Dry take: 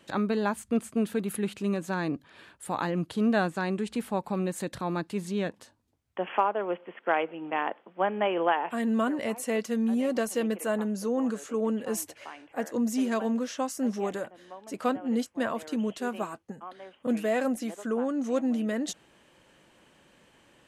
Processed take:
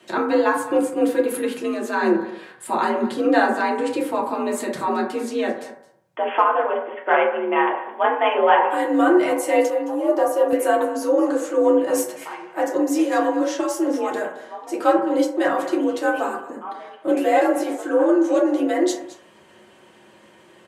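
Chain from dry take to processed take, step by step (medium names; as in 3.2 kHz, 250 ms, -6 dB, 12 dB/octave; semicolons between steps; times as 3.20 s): 7.68–8.58 s: treble shelf 7.9 kHz +10.5 dB; FDN reverb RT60 0.65 s, low-frequency decay 0.7×, high-frequency decay 0.35×, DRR -3.5 dB; frequency shift +58 Hz; 9.70–10.53 s: ten-band graphic EQ 250 Hz -9 dB, 1 kHz +8 dB, 2 kHz -10 dB, 4 kHz -9 dB, 8 kHz -7 dB; delay 217 ms -17 dB; trim +4 dB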